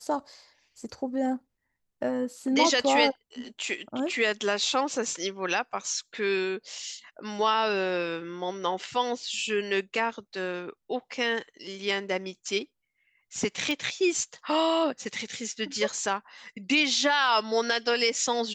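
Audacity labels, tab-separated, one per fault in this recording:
13.710000	13.710000	pop -17 dBFS

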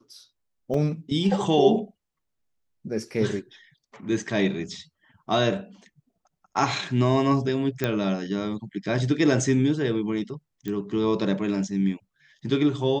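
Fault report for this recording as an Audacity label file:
0.740000	0.740000	dropout 3.5 ms
7.840000	7.840000	pop -11 dBFS
10.680000	10.680000	pop -19 dBFS

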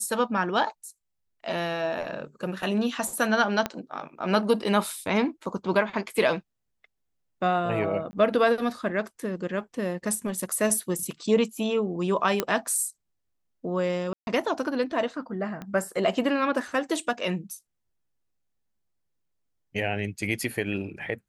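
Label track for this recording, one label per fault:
3.660000	3.660000	pop -12 dBFS
8.110000	8.130000	dropout 20 ms
12.400000	12.400000	pop -8 dBFS
14.130000	14.270000	dropout 141 ms
15.620000	15.620000	pop -23 dBFS

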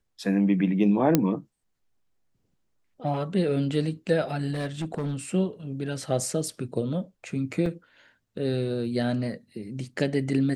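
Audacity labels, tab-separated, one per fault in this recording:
1.150000	1.150000	pop -5 dBFS
4.520000	5.160000	clipped -25 dBFS
7.660000	7.660000	dropout 2.1 ms

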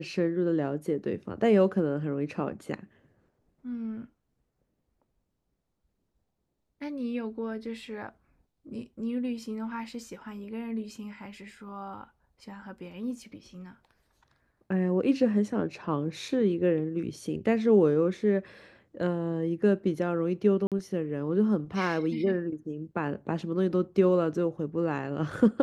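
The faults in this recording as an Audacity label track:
20.670000	20.720000	dropout 47 ms

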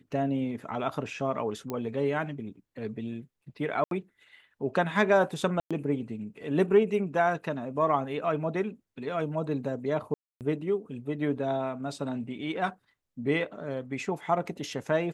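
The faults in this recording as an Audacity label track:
1.700000	1.700000	pop -19 dBFS
3.840000	3.910000	dropout 72 ms
5.600000	5.710000	dropout 106 ms
10.140000	10.410000	dropout 268 ms

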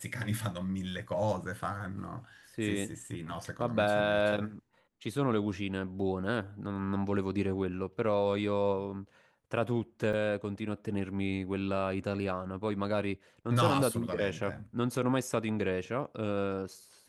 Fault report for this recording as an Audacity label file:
10.130000	10.130000	dropout 4.3 ms

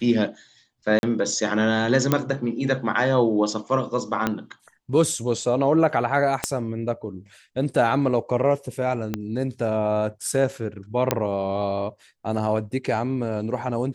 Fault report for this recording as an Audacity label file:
0.990000	1.030000	dropout 41 ms
2.120000	2.120000	pop -5 dBFS
4.270000	4.270000	pop -8 dBFS
6.440000	6.440000	pop -7 dBFS
9.140000	9.140000	pop -12 dBFS
11.110000	11.110000	pop -4 dBFS

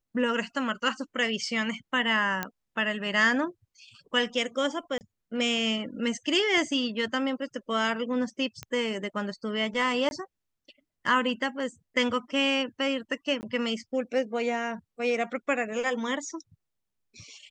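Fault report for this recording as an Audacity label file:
2.430000	2.430000	pop -13 dBFS
4.980000	5.010000	dropout 29 ms
8.630000	8.630000	pop -20 dBFS
10.090000	10.110000	dropout 21 ms
13.410000	13.430000	dropout 19 ms

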